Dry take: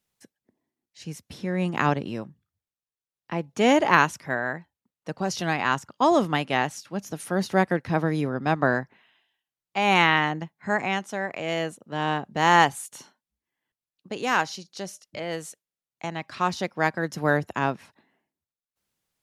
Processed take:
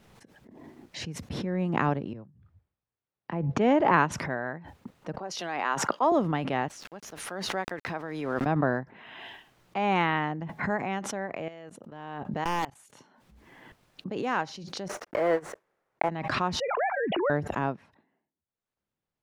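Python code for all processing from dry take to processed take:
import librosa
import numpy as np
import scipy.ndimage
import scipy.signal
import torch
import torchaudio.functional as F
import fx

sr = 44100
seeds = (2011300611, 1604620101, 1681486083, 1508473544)

y = fx.chain(x, sr, fx.highpass(hz=45.0, slope=12),
    fx.air_absorb(metres=87.0),
    fx.band_widen(depth_pct=70), at=(2.13, 4.12))
y = fx.chain(y, sr, fx.highpass(hz=420.0, slope=12),
    fx.band_widen(depth_pct=70), at=(5.18, 6.12))
y = fx.chain(y, sr, fx.highpass(hz=1200.0, slope=6),
    fx.sample_gate(floor_db=-49.0), at=(6.68, 8.46))
y = fx.chain(y, sr, fx.low_shelf(hz=460.0, db=-5.0),
    fx.level_steps(step_db=20),
    fx.overflow_wrap(gain_db=13.5), at=(11.48, 12.79))
y = fx.chain(y, sr, fx.block_float(bits=3),
    fx.band_shelf(hz=840.0, db=12.0, octaves=3.0),
    fx.upward_expand(threshold_db=-32.0, expansion=2.5), at=(14.88, 16.09))
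y = fx.chain(y, sr, fx.sine_speech(),
    fx.sustainer(db_per_s=56.0), at=(16.6, 17.3))
y = fx.lowpass(y, sr, hz=1100.0, slope=6)
y = fx.pre_swell(y, sr, db_per_s=29.0)
y = y * 10.0 ** (-3.0 / 20.0)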